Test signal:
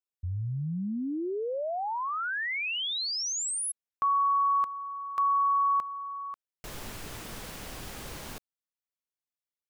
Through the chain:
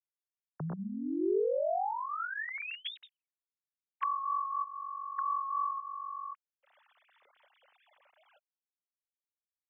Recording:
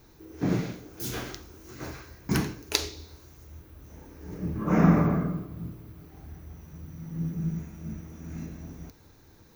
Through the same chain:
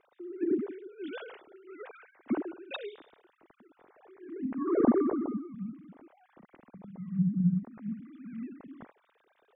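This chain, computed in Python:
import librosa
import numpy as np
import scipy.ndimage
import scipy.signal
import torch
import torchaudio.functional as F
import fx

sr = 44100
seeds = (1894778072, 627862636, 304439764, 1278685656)

y = fx.sine_speech(x, sr)
y = fx.env_lowpass_down(y, sr, base_hz=950.0, full_db=-25.0)
y = fx.dynamic_eq(y, sr, hz=390.0, q=3.6, threshold_db=-50.0, ratio=4.0, max_db=4)
y = F.gain(torch.from_numpy(y), -4.0).numpy()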